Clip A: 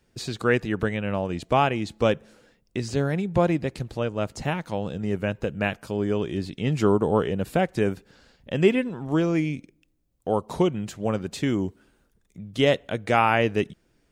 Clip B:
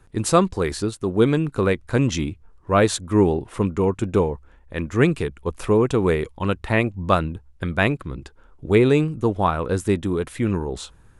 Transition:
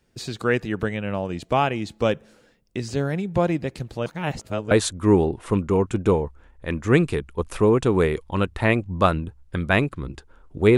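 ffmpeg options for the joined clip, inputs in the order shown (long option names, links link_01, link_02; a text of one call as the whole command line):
ffmpeg -i cue0.wav -i cue1.wav -filter_complex "[0:a]apad=whole_dur=10.77,atrim=end=10.77,asplit=2[link_01][link_02];[link_01]atrim=end=4.062[link_03];[link_02]atrim=start=4.058:end=4.712,asetpts=PTS-STARTPTS,areverse[link_04];[1:a]atrim=start=2.788:end=8.85[link_05];[link_03][link_04]acrossfade=duration=0.004:curve1=hsin:curve2=hsin[link_06];[link_06][link_05]acrossfade=duration=0.004:curve1=hsin:curve2=hsin" out.wav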